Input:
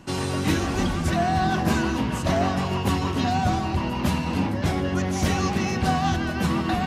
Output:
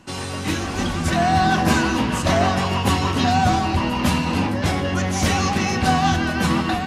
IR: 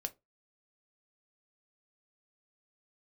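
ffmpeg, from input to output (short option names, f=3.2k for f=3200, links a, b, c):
-filter_complex "[0:a]dynaudnorm=f=660:g=3:m=7.5dB,asplit=2[a][b];[1:a]atrim=start_sample=2205,asetrate=22491,aresample=44100,lowshelf=f=480:g=-10.5[c];[b][c]afir=irnorm=-1:irlink=0,volume=0dB[d];[a][d]amix=inputs=2:normalize=0,volume=-6dB"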